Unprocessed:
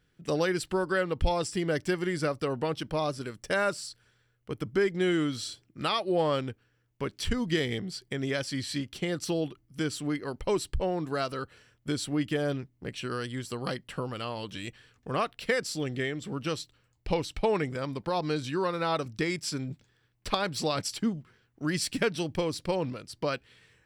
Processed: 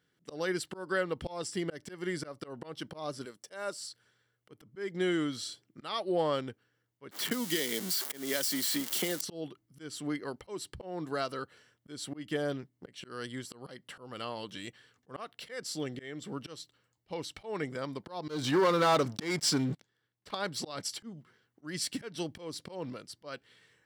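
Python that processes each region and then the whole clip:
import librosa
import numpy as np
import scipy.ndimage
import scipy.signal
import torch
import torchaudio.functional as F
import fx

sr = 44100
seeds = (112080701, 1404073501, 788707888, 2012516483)

y = fx.chain(x, sr, fx.highpass(hz=430.0, slope=6),
    fx.peak_eq(hz=1800.0, db=-6.0, octaves=1.9), at=(3.25, 3.81))
y = fx.chain(y, sr, fx.crossing_spikes(level_db=-23.0),
    fx.highpass(hz=180.0, slope=24),
    fx.band_squash(depth_pct=100), at=(7.11, 9.21))
y = fx.chain(y, sr, fx.high_shelf(hz=9100.0, db=-5.5),
    fx.leveller(passes=3), at=(18.28, 20.31))
y = scipy.signal.sosfilt(scipy.signal.bessel(2, 180.0, 'highpass', norm='mag', fs=sr, output='sos'), y)
y = fx.notch(y, sr, hz=2500.0, q=9.4)
y = fx.auto_swell(y, sr, attack_ms=207.0)
y = F.gain(torch.from_numpy(y), -2.5).numpy()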